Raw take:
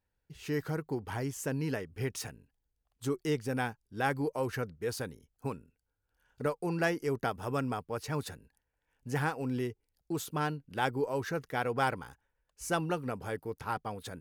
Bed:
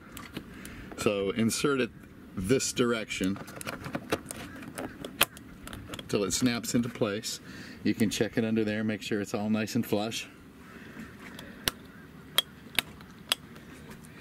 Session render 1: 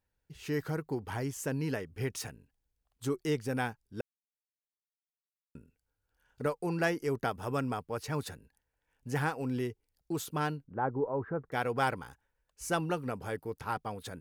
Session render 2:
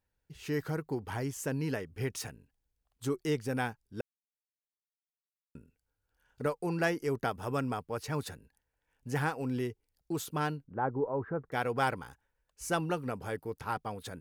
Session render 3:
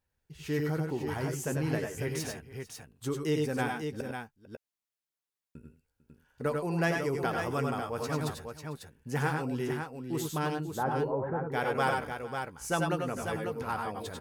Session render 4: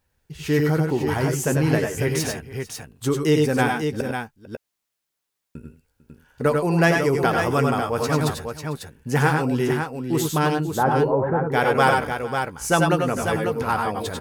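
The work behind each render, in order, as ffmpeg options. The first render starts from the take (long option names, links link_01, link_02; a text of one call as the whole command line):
ffmpeg -i in.wav -filter_complex "[0:a]asettb=1/sr,asplit=3[link_01][link_02][link_03];[link_01]atrim=end=10.644[link_04];[link_02]atrim=start=10.64:end=11.52,asetpts=PTS-STARTPTS,afade=type=in:duration=0.004:curve=qsin,afade=type=out:start_time=0.876:duration=0.004:curve=qsin,lowpass=frequency=1300:width=0.5412,lowpass=frequency=1300:width=1.3066[link_05];[link_03]atrim=start=11.516[link_06];[link_04][link_05]acrossfade=duration=0.004:curve1=hsin:curve2=qsin[link_07];[link_07][link_06]acrossfade=duration=0.004:curve1=qsin:curve2=hsin,asplit=3[link_08][link_09][link_10];[link_08]atrim=end=4.01,asetpts=PTS-STARTPTS,afade=type=out:start_time=4.006:duration=0.004:curve=hsin[link_11];[link_09]atrim=start=4.01:end=5.55,asetpts=PTS-STARTPTS,volume=0[link_12];[link_10]atrim=start=5.55,asetpts=PTS-STARTPTS,afade=type=in:duration=0.004:curve=hsin[link_13];[link_11][link_12][link_13]concat=n=3:v=0:a=1" out.wav
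ffmpeg -i in.wav -af anull out.wav
ffmpeg -i in.wav -filter_complex "[0:a]asplit=2[link_01][link_02];[link_02]adelay=13,volume=-12dB[link_03];[link_01][link_03]amix=inputs=2:normalize=0,aecho=1:1:89|102|448|546:0.447|0.447|0.112|0.473" out.wav
ffmpeg -i in.wav -af "volume=11dB" out.wav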